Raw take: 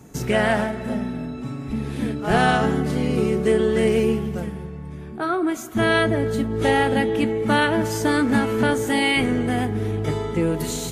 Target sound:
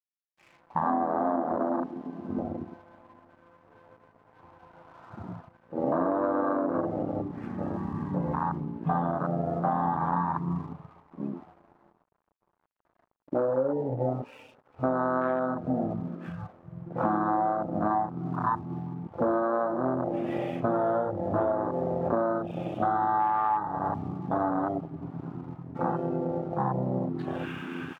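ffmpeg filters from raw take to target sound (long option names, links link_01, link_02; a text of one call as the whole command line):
ffmpeg -i in.wav -filter_complex "[0:a]lowshelf=frequency=300:gain=-12,asplit=2[link_01][link_02];[link_02]adelay=15,volume=-6.5dB[link_03];[link_01][link_03]amix=inputs=2:normalize=0,asplit=2[link_04][link_05];[link_05]asplit=4[link_06][link_07][link_08][link_09];[link_06]adelay=156,afreqshift=-75,volume=-20dB[link_10];[link_07]adelay=312,afreqshift=-150,volume=-26dB[link_11];[link_08]adelay=468,afreqshift=-225,volume=-32dB[link_12];[link_09]adelay=624,afreqshift=-300,volume=-38.1dB[link_13];[link_10][link_11][link_12][link_13]amix=inputs=4:normalize=0[link_14];[link_04][link_14]amix=inputs=2:normalize=0,asetrate=17199,aresample=44100,highpass=230,lowpass=2100,afftfilt=real='re*gte(hypot(re,im),0.00794)':imag='im*gte(hypot(re,im),0.00794)':win_size=1024:overlap=0.75,dynaudnorm=framelen=120:gausssize=13:maxgain=9dB,aeval=exprs='sgn(val(0))*max(abs(val(0))-0.0106,0)':channel_layout=same,afwtdn=0.0891,equalizer=frequency=1000:width=0.98:gain=8,acompressor=threshold=-20dB:ratio=10,volume=-3dB" out.wav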